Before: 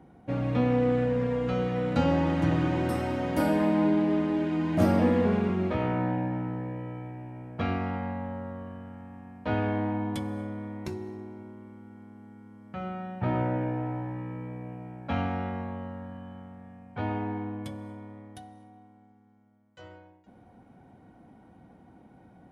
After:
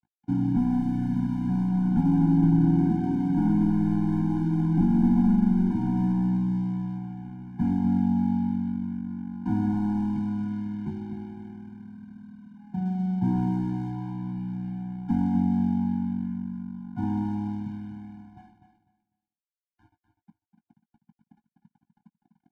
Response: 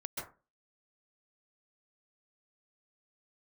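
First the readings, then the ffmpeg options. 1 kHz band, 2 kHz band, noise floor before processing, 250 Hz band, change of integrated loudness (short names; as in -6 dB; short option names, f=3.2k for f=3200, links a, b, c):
-4.5 dB, under -10 dB, -57 dBFS, +5.5 dB, +3.0 dB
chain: -filter_complex "[0:a]aeval=exprs='val(0)+0.00178*sin(2*PI*830*n/s)':c=same,afftfilt=real='re*gte(hypot(re,im),0.0178)':imag='im*gte(hypot(re,im),0.0178)':win_size=1024:overlap=0.75,equalizer=f=200:t=o:w=0.94:g=13.5,acrossover=split=170|840[a][b][c];[a]acompressor=threshold=-31dB:ratio=4[d];[b]acompressor=threshold=-19dB:ratio=4[e];[c]acompressor=threshold=-48dB:ratio=4[f];[d][e][f]amix=inputs=3:normalize=0,aresample=16000,aeval=exprs='clip(val(0),-1,0.1)':c=same,aresample=44100,lowpass=1.6k,aeval=exprs='sgn(val(0))*max(abs(val(0))-0.00531,0)':c=same,asplit=2[g][h];[h]adelay=18,volume=-13dB[i];[g][i]amix=inputs=2:normalize=0,aecho=1:1:249|498|747:0.355|0.0781|0.0172,afftfilt=real='re*eq(mod(floor(b*sr/1024/350),2),0)':imag='im*eq(mod(floor(b*sr/1024/350),2),0)':win_size=1024:overlap=0.75"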